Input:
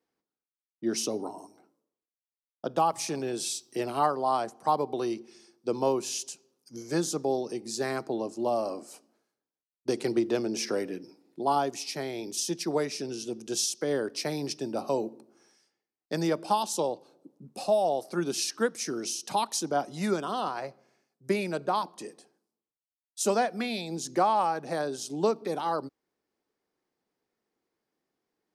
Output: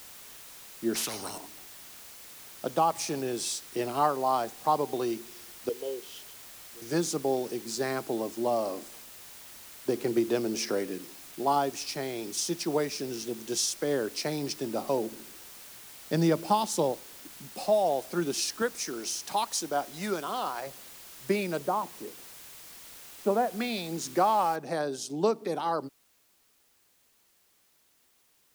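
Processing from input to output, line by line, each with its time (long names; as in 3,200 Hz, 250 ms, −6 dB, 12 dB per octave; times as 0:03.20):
0:00.95–0:01.38: every bin compressed towards the loudest bin 4 to 1
0:05.69–0:06.82: pair of resonant band-passes 1,200 Hz, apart 2.8 octaves
0:08.88–0:10.17: high-shelf EQ 3,200 Hz −11 dB
0:15.12–0:16.92: low-shelf EQ 200 Hz +11 dB
0:18.62–0:20.67: low-shelf EQ 320 Hz −8.5 dB
0:21.58–0:23.52: low-pass filter 1,200 Hz
0:24.56: noise floor change −48 dB −67 dB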